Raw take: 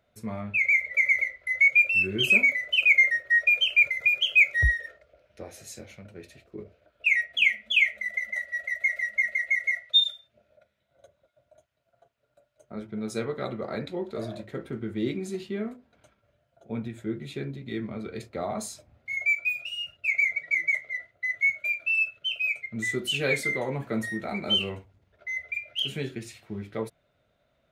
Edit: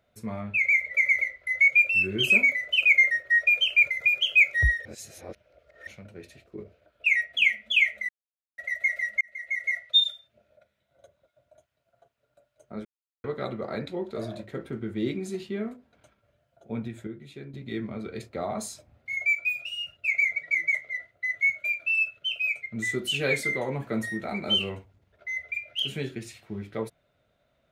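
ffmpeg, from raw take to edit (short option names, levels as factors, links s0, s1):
-filter_complex "[0:a]asplit=10[s0][s1][s2][s3][s4][s5][s6][s7][s8][s9];[s0]atrim=end=4.852[s10];[s1]atrim=start=4.848:end=5.872,asetpts=PTS-STARTPTS,areverse[s11];[s2]atrim=start=5.868:end=8.09,asetpts=PTS-STARTPTS,afade=t=out:st=2.218:d=0.004:c=hsin[s12];[s3]atrim=start=8.09:end=8.58,asetpts=PTS-STARTPTS,volume=0[s13];[s4]atrim=start=8.58:end=9.21,asetpts=PTS-STARTPTS,afade=t=in:d=0.004:c=hsin,afade=t=out:st=0.626:d=0.004:c=hsin[s14];[s5]atrim=start=9.21:end=12.85,asetpts=PTS-STARTPTS,afade=t=in:d=0.56,afade=t=out:st=3.636:d=0.004:c=hsin[s15];[s6]atrim=start=12.85:end=13.24,asetpts=PTS-STARTPTS,volume=0[s16];[s7]atrim=start=13.24:end=17.072,asetpts=PTS-STARTPTS,afade=t=in:d=0.004:c=hsin[s17];[s8]atrim=start=17.068:end=17.542,asetpts=PTS-STARTPTS,volume=0.398[s18];[s9]atrim=start=17.538[s19];[s10][s11]acrossfade=d=0.004:c1=hsin:c2=hsin[s20];[s12][s13][s14][s15][s16][s17]concat=n=6:v=0:a=1[s21];[s20][s21]acrossfade=d=0.004:c1=hsin:c2=hsin[s22];[s22][s18]acrossfade=d=0.004:c1=hsin:c2=hsin[s23];[s23][s19]acrossfade=d=0.004:c1=hsin:c2=hsin"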